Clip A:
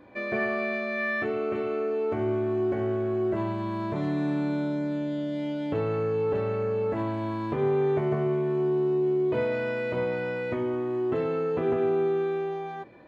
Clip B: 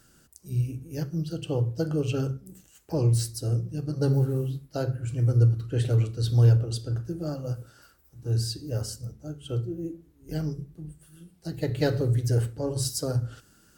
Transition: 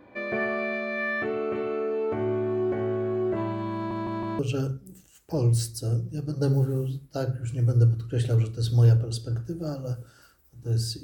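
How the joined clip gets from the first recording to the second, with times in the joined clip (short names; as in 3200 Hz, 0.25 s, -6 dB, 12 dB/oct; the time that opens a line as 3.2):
clip A
3.75 stutter in place 0.16 s, 4 plays
4.39 switch to clip B from 1.99 s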